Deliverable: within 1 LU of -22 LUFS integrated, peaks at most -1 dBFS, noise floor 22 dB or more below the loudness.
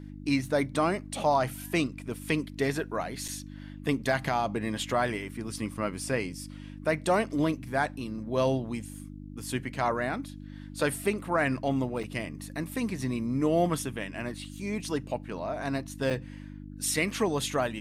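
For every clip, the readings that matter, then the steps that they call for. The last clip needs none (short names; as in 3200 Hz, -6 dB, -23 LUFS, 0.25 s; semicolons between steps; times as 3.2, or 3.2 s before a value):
dropouts 3; longest dropout 5.2 ms; hum 50 Hz; harmonics up to 300 Hz; hum level -41 dBFS; loudness -30.5 LUFS; peak -13.5 dBFS; loudness target -22.0 LUFS
-> interpolate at 3.28/12.03/16.1, 5.2 ms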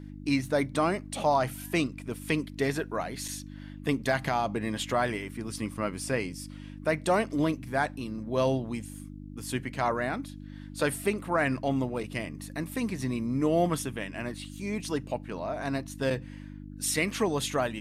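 dropouts 0; hum 50 Hz; harmonics up to 300 Hz; hum level -41 dBFS
-> de-hum 50 Hz, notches 6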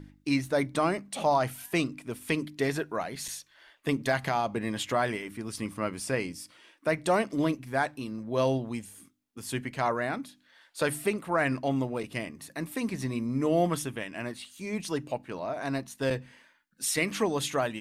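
hum none; loudness -30.5 LUFS; peak -13.0 dBFS; loudness target -22.0 LUFS
-> gain +8.5 dB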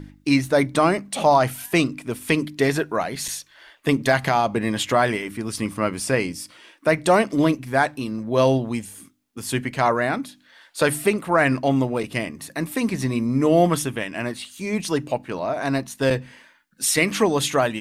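loudness -22.0 LUFS; peak -4.5 dBFS; noise floor -57 dBFS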